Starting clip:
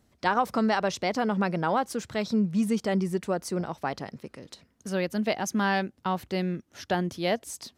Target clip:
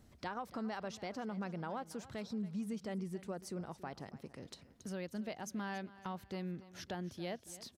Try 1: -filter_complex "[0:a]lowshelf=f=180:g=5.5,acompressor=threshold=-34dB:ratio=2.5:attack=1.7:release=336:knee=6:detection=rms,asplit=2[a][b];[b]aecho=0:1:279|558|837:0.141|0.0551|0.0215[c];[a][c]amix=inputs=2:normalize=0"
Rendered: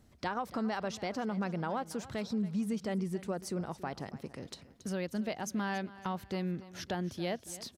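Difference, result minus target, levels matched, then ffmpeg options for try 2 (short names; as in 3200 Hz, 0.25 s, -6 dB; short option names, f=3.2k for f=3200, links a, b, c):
compressor: peak gain reduction -6.5 dB
-filter_complex "[0:a]lowshelf=f=180:g=5.5,acompressor=threshold=-45dB:ratio=2.5:attack=1.7:release=336:knee=6:detection=rms,asplit=2[a][b];[b]aecho=0:1:279|558|837:0.141|0.0551|0.0215[c];[a][c]amix=inputs=2:normalize=0"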